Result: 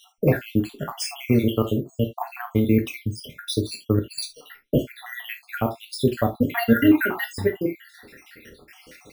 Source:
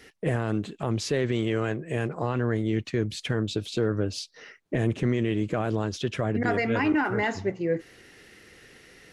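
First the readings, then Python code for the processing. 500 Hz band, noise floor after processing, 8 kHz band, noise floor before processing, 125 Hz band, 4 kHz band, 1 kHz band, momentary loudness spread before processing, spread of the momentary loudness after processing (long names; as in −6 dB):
+2.5 dB, −57 dBFS, +4.5 dB, −57 dBFS, +2.0 dB, +3.5 dB, +1.0 dB, 6 LU, 14 LU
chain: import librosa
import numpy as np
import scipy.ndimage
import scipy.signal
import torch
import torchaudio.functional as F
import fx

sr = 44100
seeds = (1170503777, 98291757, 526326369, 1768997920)

y = fx.spec_dropout(x, sr, seeds[0], share_pct=74)
y = np.repeat(scipy.signal.resample_poly(y, 1, 3), 3)[:len(y)]
y = fx.rev_gated(y, sr, seeds[1], gate_ms=100, shape='falling', drr_db=3.5)
y = y * 10.0 ** (8.0 / 20.0)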